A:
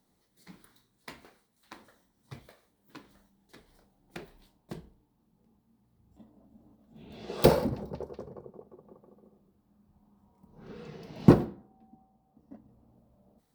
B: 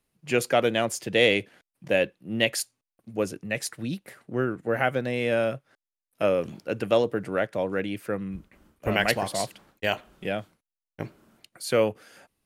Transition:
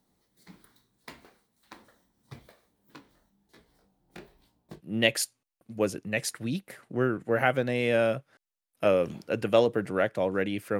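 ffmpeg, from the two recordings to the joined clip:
ffmpeg -i cue0.wav -i cue1.wav -filter_complex "[0:a]asplit=3[link_01][link_02][link_03];[link_01]afade=type=out:start_time=2.96:duration=0.02[link_04];[link_02]flanger=delay=17:depth=5.8:speed=1.1,afade=type=in:start_time=2.96:duration=0.02,afade=type=out:start_time=4.82:duration=0.02[link_05];[link_03]afade=type=in:start_time=4.82:duration=0.02[link_06];[link_04][link_05][link_06]amix=inputs=3:normalize=0,apad=whole_dur=10.79,atrim=end=10.79,atrim=end=4.82,asetpts=PTS-STARTPTS[link_07];[1:a]atrim=start=2.1:end=8.17,asetpts=PTS-STARTPTS[link_08];[link_07][link_08]acrossfade=duration=0.1:curve1=tri:curve2=tri" out.wav

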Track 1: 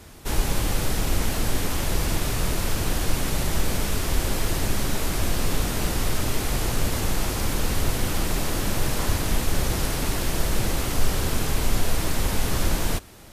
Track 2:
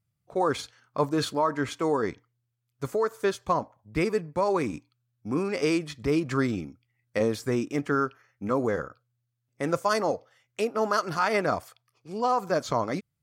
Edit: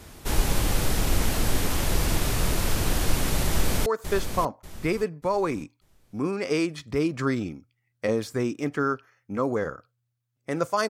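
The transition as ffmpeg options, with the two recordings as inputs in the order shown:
ffmpeg -i cue0.wav -i cue1.wav -filter_complex "[0:a]apad=whole_dur=10.89,atrim=end=10.89,atrim=end=3.862[link_01];[1:a]atrim=start=2.978:end=10.01[link_02];[link_01][link_02]acrossfade=duration=0.004:curve1=hsin:curve2=hsin,asplit=2[link_03][link_04];[link_04]afade=type=in:start_time=3.45:duration=0.01,afade=type=out:start_time=3.86:duration=0.01,aecho=0:1:590|1180|1770|2360:0.398107|0.119432|0.0358296|0.0107489[link_05];[link_03][link_05]amix=inputs=2:normalize=0" out.wav

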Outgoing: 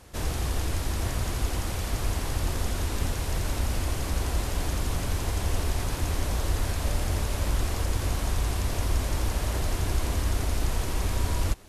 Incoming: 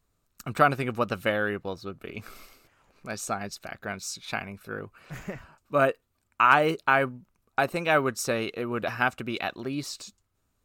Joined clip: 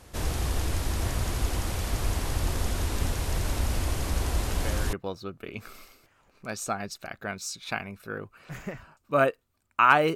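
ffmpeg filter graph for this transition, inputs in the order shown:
ffmpeg -i cue0.wav -i cue1.wav -filter_complex "[1:a]asplit=2[link_01][link_02];[0:a]apad=whole_dur=10.15,atrim=end=10.15,atrim=end=4.932[link_03];[link_02]atrim=start=1.538:end=6.76[link_04];[link_01]atrim=start=1.09:end=1.54,asetpts=PTS-STARTPTS,volume=-13dB,afade=type=in:duration=0.004:curve=hsin,afade=type=out:start_time=0.446:duration=0.004:curve=hsin,adelay=4480[link_05];[link_03][link_04]acrossfade=duration=0.004:curve1=hsin:curve2=hsin[link_06];[link_06][link_05]amix=inputs=2:normalize=0" out.wav

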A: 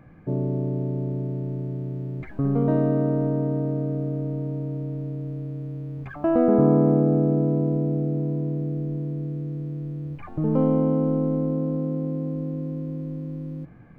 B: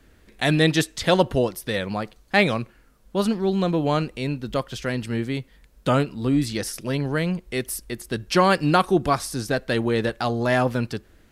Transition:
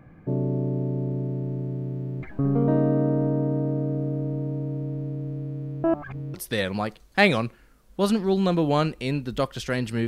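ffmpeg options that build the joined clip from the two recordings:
ffmpeg -i cue0.wav -i cue1.wav -filter_complex "[0:a]apad=whole_dur=10.07,atrim=end=10.07,asplit=2[link_01][link_02];[link_01]atrim=end=5.842[link_03];[link_02]atrim=start=5.838:end=6.342,asetpts=PTS-STARTPTS,areverse[link_04];[1:a]atrim=start=1.498:end=5.23[link_05];[link_03][link_04]acrossfade=duration=0.004:curve1=hsin:curve2=hsin[link_06];[link_06][link_05]acrossfade=duration=0.004:curve1=hsin:curve2=hsin" out.wav

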